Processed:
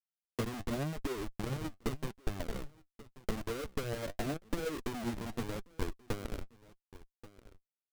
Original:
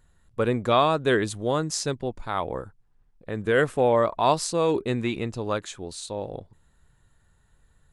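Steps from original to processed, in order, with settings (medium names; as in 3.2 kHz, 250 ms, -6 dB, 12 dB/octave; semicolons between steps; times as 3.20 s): saturation -22.5 dBFS, distortion -9 dB; elliptic band-pass 220–750 Hz, stop band 40 dB; peak limiter -23.5 dBFS, peak gain reduction 4 dB; bass shelf 290 Hz +11 dB; compression 8:1, threshold -38 dBFS, peak gain reduction 15.5 dB; Schmitt trigger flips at -40.5 dBFS; on a send: delay 1133 ms -18 dB; on the sum: flange 0.86 Hz, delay 1.8 ms, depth 9 ms, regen +49%; transient shaper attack +9 dB, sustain -4 dB; trim +8.5 dB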